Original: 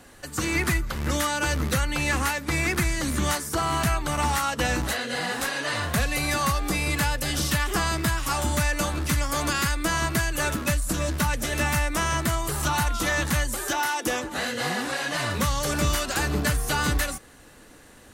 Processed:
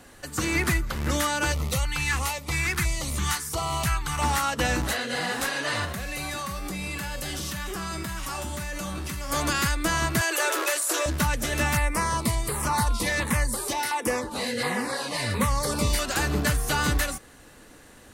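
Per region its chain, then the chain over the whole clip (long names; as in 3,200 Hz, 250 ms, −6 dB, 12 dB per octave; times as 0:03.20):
0:01.52–0:04.22: parametric band 280 Hz −11.5 dB 0.93 octaves + auto-filter notch square 1.5 Hz 600–1,600 Hz
0:05.85–0:09.31: tuned comb filter 190 Hz, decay 0.52 s, mix 80% + envelope flattener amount 100%
0:10.21–0:11.06: Butterworth high-pass 340 Hz 72 dB per octave + envelope flattener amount 70%
0:11.77–0:15.99: EQ curve with evenly spaced ripples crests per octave 0.92, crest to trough 7 dB + auto-filter notch saw down 1.4 Hz 890–6,200 Hz
whole clip: no processing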